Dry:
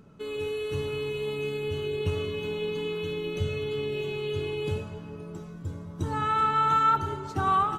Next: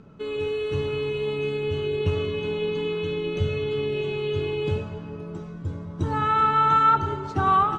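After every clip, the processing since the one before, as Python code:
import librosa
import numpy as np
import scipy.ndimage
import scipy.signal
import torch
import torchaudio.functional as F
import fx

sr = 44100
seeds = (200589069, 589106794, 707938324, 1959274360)

y = scipy.signal.sosfilt(scipy.signal.butter(2, 7400.0, 'lowpass', fs=sr, output='sos'), x)
y = fx.high_shelf(y, sr, hz=5800.0, db=-9.5)
y = y * 10.0 ** (4.5 / 20.0)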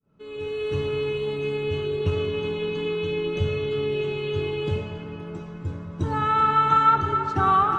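y = fx.fade_in_head(x, sr, length_s=0.69)
y = fx.echo_banded(y, sr, ms=275, feedback_pct=75, hz=1400.0, wet_db=-8.0)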